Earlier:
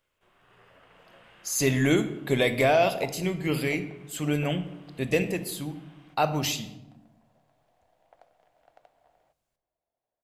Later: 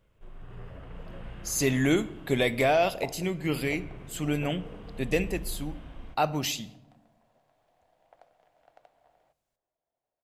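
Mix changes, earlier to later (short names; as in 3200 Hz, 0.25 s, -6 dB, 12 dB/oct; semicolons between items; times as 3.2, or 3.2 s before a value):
speech: send -8.0 dB; first sound: remove HPF 1400 Hz 6 dB/oct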